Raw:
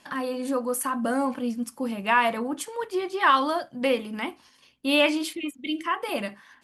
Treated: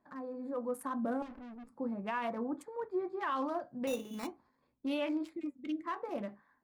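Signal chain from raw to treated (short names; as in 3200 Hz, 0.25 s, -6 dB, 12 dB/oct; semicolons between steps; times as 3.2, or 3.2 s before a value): Wiener smoothing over 15 samples; high shelf 2000 Hz -10.5 dB; limiter -20 dBFS, peak gain reduction 9 dB; AGC gain up to 6 dB; 1.22–1.7 tube stage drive 34 dB, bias 0.8; 3.87–4.27 sample-rate reducer 3200 Hz, jitter 0%; flange 0.41 Hz, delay 2.7 ms, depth 6.5 ms, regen -75%; gain -8.5 dB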